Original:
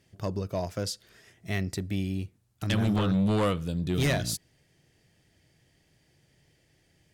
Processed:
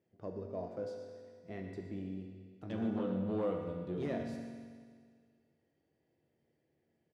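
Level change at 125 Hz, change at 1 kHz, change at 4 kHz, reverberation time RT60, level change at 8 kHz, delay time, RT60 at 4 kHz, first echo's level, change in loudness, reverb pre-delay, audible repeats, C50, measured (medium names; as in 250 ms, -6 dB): -15.5 dB, -11.5 dB, -24.0 dB, 1.9 s, under -25 dB, 121 ms, 1.9 s, -12.5 dB, -10.5 dB, 4 ms, 1, 3.0 dB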